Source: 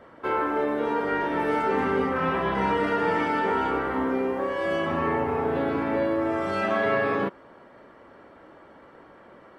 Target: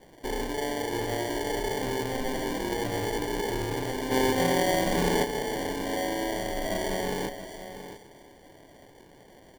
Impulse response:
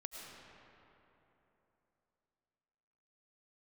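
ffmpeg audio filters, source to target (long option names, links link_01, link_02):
-filter_complex "[0:a]asoftclip=type=tanh:threshold=-21.5dB,highpass=290,asplit=2[link_01][link_02];[1:a]atrim=start_sample=2205,lowshelf=frequency=450:gain=12[link_03];[link_02][link_03]afir=irnorm=-1:irlink=0,volume=-14dB[link_04];[link_01][link_04]amix=inputs=2:normalize=0,acrusher=samples=34:mix=1:aa=0.000001,aecho=1:1:677:0.251,asplit=3[link_05][link_06][link_07];[link_05]afade=type=out:start_time=4.1:duration=0.02[link_08];[link_06]acontrast=66,afade=type=in:start_time=4.1:duration=0.02,afade=type=out:start_time=5.23:duration=0.02[link_09];[link_07]afade=type=in:start_time=5.23:duration=0.02[link_10];[link_08][link_09][link_10]amix=inputs=3:normalize=0,volume=-3.5dB"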